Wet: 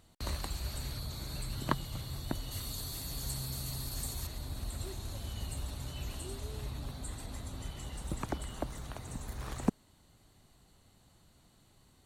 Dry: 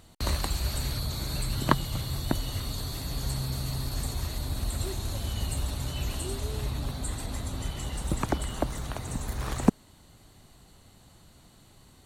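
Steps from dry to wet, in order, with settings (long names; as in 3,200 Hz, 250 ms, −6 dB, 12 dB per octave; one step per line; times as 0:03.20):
0:02.51–0:04.27: high-shelf EQ 5,100 Hz +10.5 dB
level −8.5 dB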